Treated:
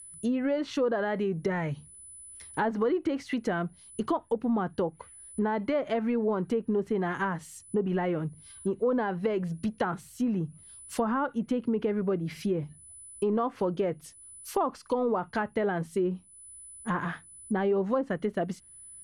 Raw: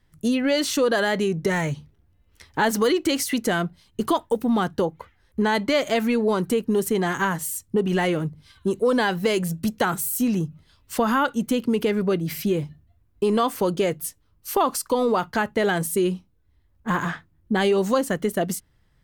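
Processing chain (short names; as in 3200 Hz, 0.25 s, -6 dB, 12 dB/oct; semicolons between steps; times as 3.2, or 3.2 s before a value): whine 10000 Hz -38 dBFS; treble ducked by the level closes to 1200 Hz, closed at -17 dBFS; gain -6 dB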